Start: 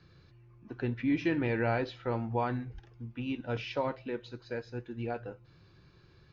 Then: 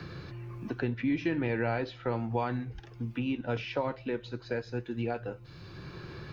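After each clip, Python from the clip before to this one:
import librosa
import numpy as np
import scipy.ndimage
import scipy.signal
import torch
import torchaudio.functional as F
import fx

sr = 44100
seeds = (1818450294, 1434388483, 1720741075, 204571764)

y = fx.band_squash(x, sr, depth_pct=70)
y = y * 10.0 ** (1.0 / 20.0)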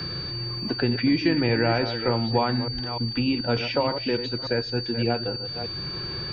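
y = fx.reverse_delay(x, sr, ms=298, wet_db=-9.0)
y = y + 10.0 ** (-39.0 / 20.0) * np.sin(2.0 * np.pi * 4600.0 * np.arange(len(y)) / sr)
y = y * 10.0 ** (7.5 / 20.0)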